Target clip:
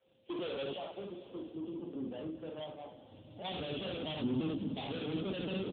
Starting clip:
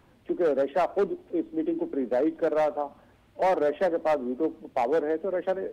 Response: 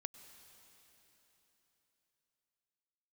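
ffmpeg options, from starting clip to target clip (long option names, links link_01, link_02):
-filter_complex "[0:a]asplit=3[link_01][link_02][link_03];[link_01]afade=type=out:start_time=0.72:duration=0.02[link_04];[link_02]acompressor=threshold=-40dB:ratio=5,afade=type=in:start_time=0.72:duration=0.02,afade=type=out:start_time=3.44:duration=0.02[link_05];[link_03]afade=type=in:start_time=3.44:duration=0.02[link_06];[link_04][link_05][link_06]amix=inputs=3:normalize=0,aecho=1:1:26|60:0.422|0.631,alimiter=limit=-20.5dB:level=0:latency=1:release=20,aeval=exprs='val(0)+0.00224*sin(2*PI*530*n/s)':channel_layout=same,asoftclip=type=tanh:threshold=-36.5dB,asubboost=boost=11.5:cutoff=160,highpass=100,agate=range=-33dB:threshold=-44dB:ratio=3:detection=peak,aexciter=amount=15.1:drive=6.7:freq=3000,highshelf=frequency=2600:gain=-12[link_07];[1:a]atrim=start_sample=2205[link_08];[link_07][link_08]afir=irnorm=-1:irlink=0,volume=6dB" -ar 8000 -c:a libopencore_amrnb -b:a 6700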